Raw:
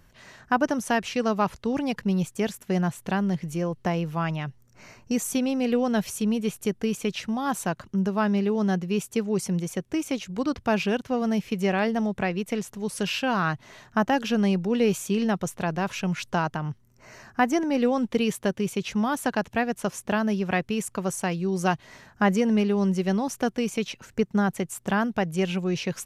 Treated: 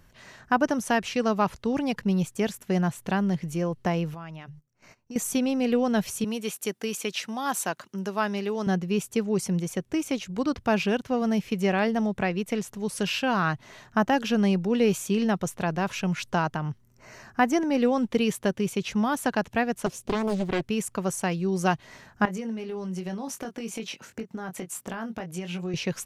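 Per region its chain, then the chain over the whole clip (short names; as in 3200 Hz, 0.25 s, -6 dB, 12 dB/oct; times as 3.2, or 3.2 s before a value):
4.14–5.16 notches 50/100/150 Hz + gate -48 dBFS, range -20 dB + compressor 3:1, threshold -41 dBFS
6.24–8.67 Bessel high-pass 250 Hz + tilt +1.5 dB/oct
19.86–20.61 de-esser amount 65% + band shelf 1300 Hz -8 dB + Doppler distortion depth 0.79 ms
22.25–25.74 HPF 150 Hz + compressor 12:1, threshold -30 dBFS + doubler 22 ms -6.5 dB
whole clip: dry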